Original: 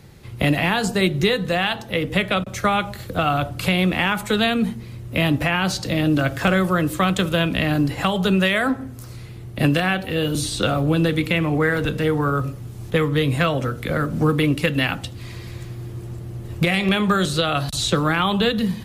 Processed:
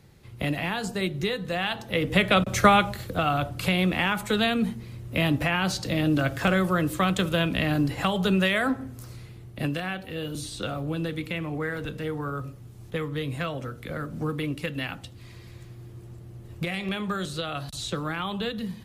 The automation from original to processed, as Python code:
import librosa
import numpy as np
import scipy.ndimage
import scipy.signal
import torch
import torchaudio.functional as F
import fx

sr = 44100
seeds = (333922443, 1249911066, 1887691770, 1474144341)

y = fx.gain(x, sr, db=fx.line((1.41, -9.0), (2.61, 3.5), (3.19, -4.5), (9.05, -4.5), (9.73, -11.0)))